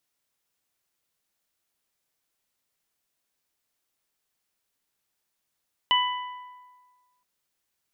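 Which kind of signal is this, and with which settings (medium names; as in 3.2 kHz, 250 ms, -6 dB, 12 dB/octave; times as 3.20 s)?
additive tone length 1.32 s, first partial 994 Hz, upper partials -7/1.5 dB, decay 1.50 s, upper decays 1.18/0.76 s, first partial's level -20 dB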